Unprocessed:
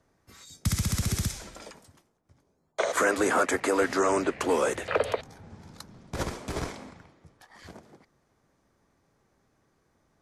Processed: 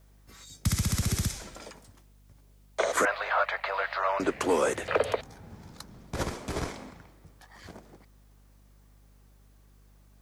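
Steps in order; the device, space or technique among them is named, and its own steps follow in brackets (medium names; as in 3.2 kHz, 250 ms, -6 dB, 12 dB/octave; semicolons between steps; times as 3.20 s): 3.05–4.20 s: Chebyshev band-pass 590–4300 Hz, order 4; video cassette with head-switching buzz (mains buzz 50 Hz, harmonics 5, -58 dBFS -8 dB/octave; white noise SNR 39 dB)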